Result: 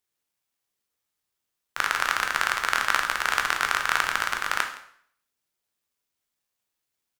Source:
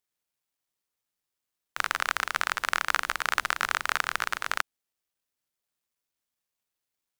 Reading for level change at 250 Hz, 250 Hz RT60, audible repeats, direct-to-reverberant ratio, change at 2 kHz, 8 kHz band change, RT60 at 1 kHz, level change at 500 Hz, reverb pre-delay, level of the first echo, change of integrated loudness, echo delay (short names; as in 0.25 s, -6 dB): +3.5 dB, 0.55 s, 1, 4.0 dB, +3.5 dB, +3.5 dB, 0.60 s, +3.5 dB, 7 ms, -20.0 dB, +3.5 dB, 0.166 s